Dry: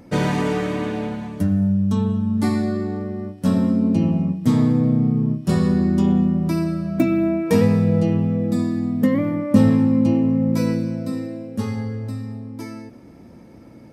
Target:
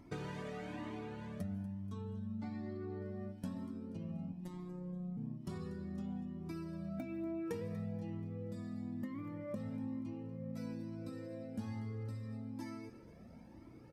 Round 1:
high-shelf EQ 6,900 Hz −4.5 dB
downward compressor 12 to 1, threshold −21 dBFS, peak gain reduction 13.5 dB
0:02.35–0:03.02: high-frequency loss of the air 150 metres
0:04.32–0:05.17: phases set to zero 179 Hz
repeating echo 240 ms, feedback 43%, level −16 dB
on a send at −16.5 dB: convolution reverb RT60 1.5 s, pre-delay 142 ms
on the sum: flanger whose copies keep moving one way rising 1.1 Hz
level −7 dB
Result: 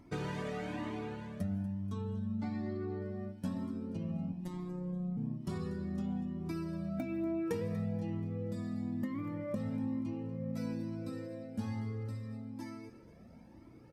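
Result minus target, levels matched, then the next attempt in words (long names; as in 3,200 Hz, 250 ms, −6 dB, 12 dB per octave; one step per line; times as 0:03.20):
downward compressor: peak gain reduction −5.5 dB
high-shelf EQ 6,900 Hz −4.5 dB
downward compressor 12 to 1, threshold −27 dBFS, peak gain reduction 19 dB
0:02.35–0:03.02: high-frequency loss of the air 150 metres
0:04.32–0:05.17: phases set to zero 179 Hz
repeating echo 240 ms, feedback 43%, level −16 dB
on a send at −16.5 dB: convolution reverb RT60 1.5 s, pre-delay 142 ms
on the sum: flanger whose copies keep moving one way rising 1.1 Hz
level −7 dB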